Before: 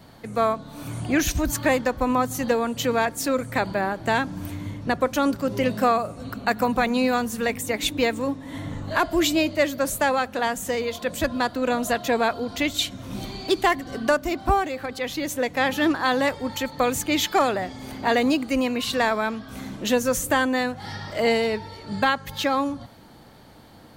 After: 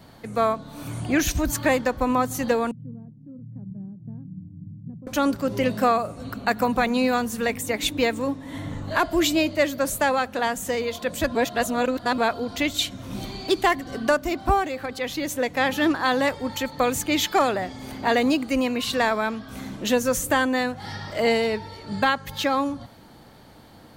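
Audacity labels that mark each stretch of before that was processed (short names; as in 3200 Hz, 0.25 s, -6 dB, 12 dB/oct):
2.710000	5.070000	Butterworth band-pass 150 Hz, Q 1.9
11.350000	12.180000	reverse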